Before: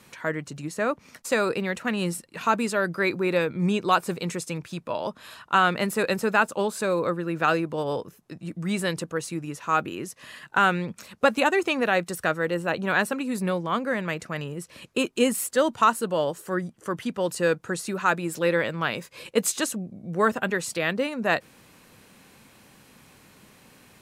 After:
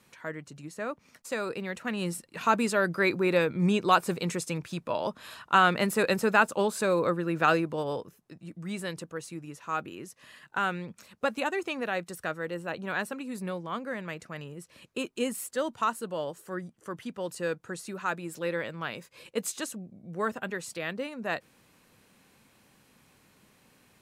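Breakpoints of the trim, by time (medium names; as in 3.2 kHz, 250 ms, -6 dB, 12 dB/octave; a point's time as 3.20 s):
1.40 s -9 dB
2.59 s -1 dB
7.54 s -1 dB
8.37 s -8.5 dB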